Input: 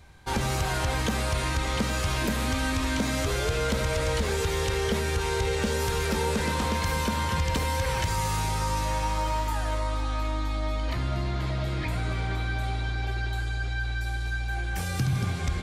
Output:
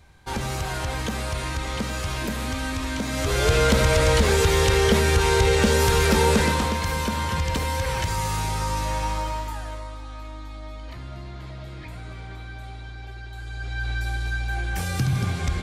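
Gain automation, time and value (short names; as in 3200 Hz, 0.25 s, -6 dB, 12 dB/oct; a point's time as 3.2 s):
3.07 s -1 dB
3.51 s +8 dB
6.37 s +8 dB
6.77 s +1.5 dB
9.1 s +1.5 dB
9.98 s -8.5 dB
13.3 s -8.5 dB
13.9 s +3 dB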